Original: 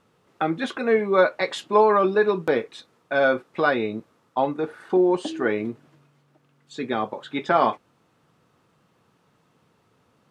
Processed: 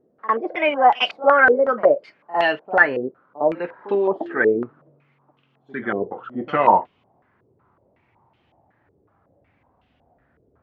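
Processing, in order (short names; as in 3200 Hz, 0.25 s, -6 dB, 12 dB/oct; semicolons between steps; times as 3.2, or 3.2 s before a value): speed glide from 143% -> 51%; pre-echo 55 ms -17 dB; stepped low-pass 5.4 Hz 430–3000 Hz; gain -1.5 dB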